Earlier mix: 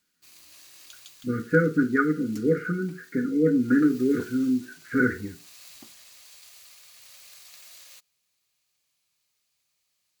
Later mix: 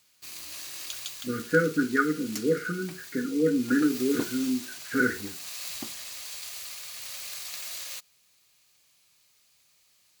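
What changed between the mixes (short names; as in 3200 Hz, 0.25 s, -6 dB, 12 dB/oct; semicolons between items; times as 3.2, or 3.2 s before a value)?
speech: add low shelf 210 Hz -10 dB; background +11.0 dB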